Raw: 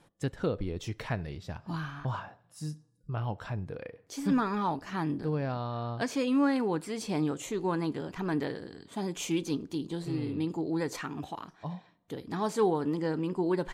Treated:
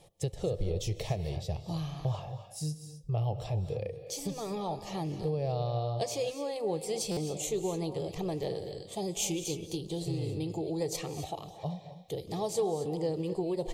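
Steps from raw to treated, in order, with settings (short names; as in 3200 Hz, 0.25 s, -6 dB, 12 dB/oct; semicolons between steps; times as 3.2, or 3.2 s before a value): compressor, threshold -30 dBFS, peak gain reduction 9 dB; bell 970 Hz -11.5 dB 0.24 oct; fixed phaser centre 620 Hz, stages 4; dynamic EQ 1600 Hz, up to -6 dB, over -59 dBFS, Q 0.73; reverb, pre-delay 0.114 s, DRR 10 dB; stuck buffer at 7.11, samples 256, times 9; gain +8 dB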